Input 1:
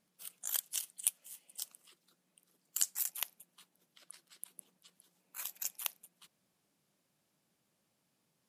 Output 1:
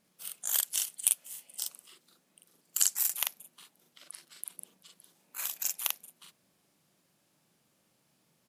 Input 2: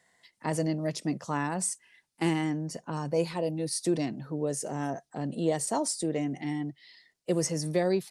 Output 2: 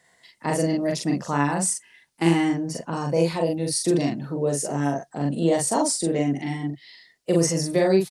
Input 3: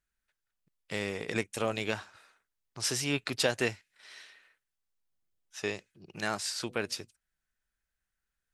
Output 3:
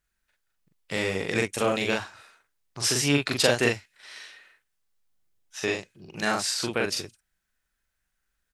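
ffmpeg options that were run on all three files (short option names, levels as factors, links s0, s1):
-filter_complex "[0:a]asplit=2[s0][s1];[s1]adelay=42,volume=0.794[s2];[s0][s2]amix=inputs=2:normalize=0,volume=1.78"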